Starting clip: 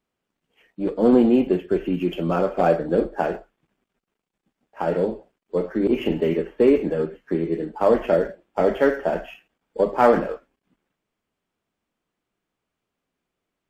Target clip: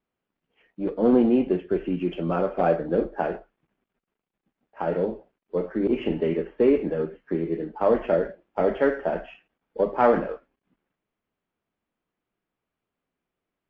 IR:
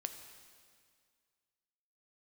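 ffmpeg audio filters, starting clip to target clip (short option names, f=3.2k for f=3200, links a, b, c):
-af "lowpass=3.1k,volume=-3dB"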